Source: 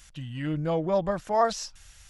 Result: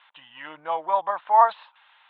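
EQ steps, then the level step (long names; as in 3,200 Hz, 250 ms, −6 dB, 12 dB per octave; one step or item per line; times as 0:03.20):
high-pass with resonance 930 Hz, resonance Q 4.9
Butterworth low-pass 3,800 Hz 96 dB per octave
0.0 dB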